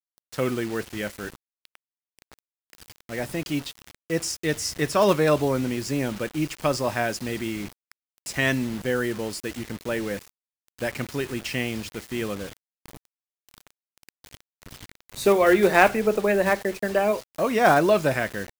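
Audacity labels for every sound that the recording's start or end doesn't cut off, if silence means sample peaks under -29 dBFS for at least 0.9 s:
3.110000	12.470000	sound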